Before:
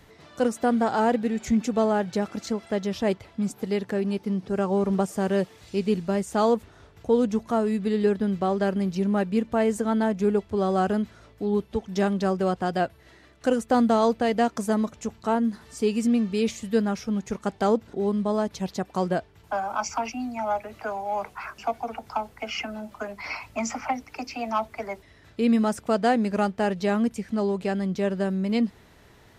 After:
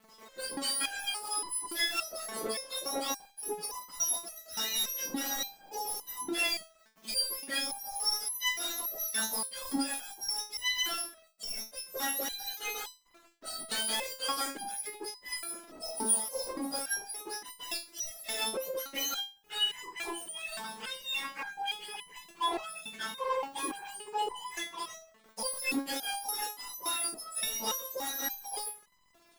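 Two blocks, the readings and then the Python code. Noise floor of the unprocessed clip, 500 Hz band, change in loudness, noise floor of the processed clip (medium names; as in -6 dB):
-54 dBFS, -17.5 dB, -7.5 dB, -63 dBFS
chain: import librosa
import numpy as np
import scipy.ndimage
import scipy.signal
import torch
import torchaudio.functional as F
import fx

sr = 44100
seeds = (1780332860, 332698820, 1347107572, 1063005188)

y = fx.octave_mirror(x, sr, pivot_hz=1500.0)
y = fx.high_shelf(y, sr, hz=4100.0, db=-4.5)
y = fx.leveller(y, sr, passes=5)
y = fx.dynamic_eq(y, sr, hz=670.0, q=0.86, threshold_db=-38.0, ratio=4.0, max_db=6)
y = fx.resonator_held(y, sr, hz=3.5, low_hz=220.0, high_hz=1000.0)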